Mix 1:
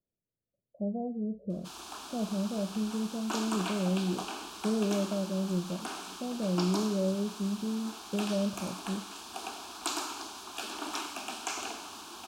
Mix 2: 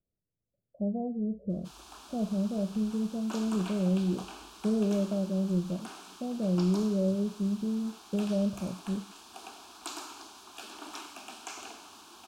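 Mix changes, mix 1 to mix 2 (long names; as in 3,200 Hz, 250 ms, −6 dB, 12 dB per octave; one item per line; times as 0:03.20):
speech: add low-shelf EQ 120 Hz +9.5 dB
background −6.5 dB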